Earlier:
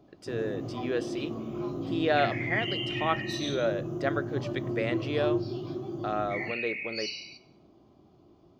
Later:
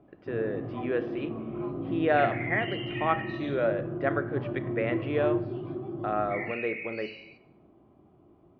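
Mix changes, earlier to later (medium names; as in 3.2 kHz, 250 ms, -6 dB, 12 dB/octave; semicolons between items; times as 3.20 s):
speech: send +11.5 dB; master: add low-pass 2.5 kHz 24 dB/octave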